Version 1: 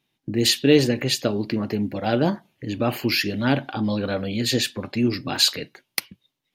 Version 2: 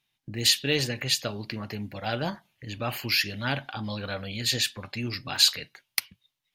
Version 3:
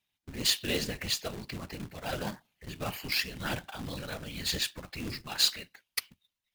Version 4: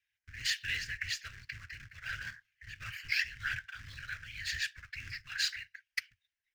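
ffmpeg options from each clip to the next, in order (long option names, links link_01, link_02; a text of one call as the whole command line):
ffmpeg -i in.wav -af "equalizer=frequency=310:width=0.64:gain=-14,volume=-1dB" out.wav
ffmpeg -i in.wav -af "afftfilt=real='hypot(re,im)*cos(2*PI*random(0))':imag='hypot(re,im)*sin(2*PI*random(1))':win_size=512:overlap=0.75,acrusher=bits=2:mode=log:mix=0:aa=0.000001" out.wav
ffmpeg -i in.wav -af "firequalizer=gain_entry='entry(110,0);entry(180,-21);entry(480,-26);entry(820,-26);entry(1600,13);entry(3700,-4);entry(5400,2);entry(9900,-11)':delay=0.05:min_phase=1,volume=-6dB" out.wav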